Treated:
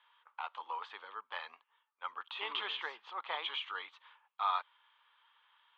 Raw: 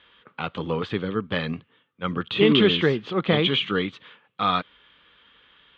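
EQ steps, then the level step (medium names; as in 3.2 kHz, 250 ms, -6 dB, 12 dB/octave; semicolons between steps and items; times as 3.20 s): ladder high-pass 840 Hz, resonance 70%; -4.0 dB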